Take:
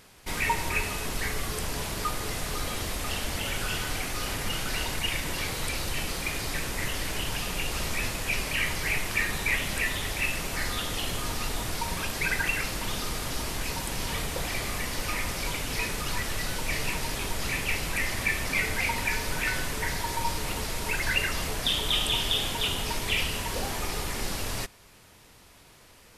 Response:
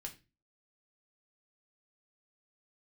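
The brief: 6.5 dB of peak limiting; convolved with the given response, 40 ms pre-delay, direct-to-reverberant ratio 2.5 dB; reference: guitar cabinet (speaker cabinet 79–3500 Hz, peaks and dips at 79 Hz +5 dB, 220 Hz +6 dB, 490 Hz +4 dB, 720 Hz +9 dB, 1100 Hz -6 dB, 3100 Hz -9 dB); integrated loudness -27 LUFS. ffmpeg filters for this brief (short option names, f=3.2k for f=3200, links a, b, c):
-filter_complex "[0:a]alimiter=limit=-19.5dB:level=0:latency=1,asplit=2[a][b];[1:a]atrim=start_sample=2205,adelay=40[c];[b][c]afir=irnorm=-1:irlink=0,volume=1dB[d];[a][d]amix=inputs=2:normalize=0,highpass=79,equalizer=f=79:t=q:w=4:g=5,equalizer=f=220:t=q:w=4:g=6,equalizer=f=490:t=q:w=4:g=4,equalizer=f=720:t=q:w=4:g=9,equalizer=f=1.1k:t=q:w=4:g=-6,equalizer=f=3.1k:t=q:w=4:g=-9,lowpass=f=3.5k:w=0.5412,lowpass=f=3.5k:w=1.3066,volume=3.5dB"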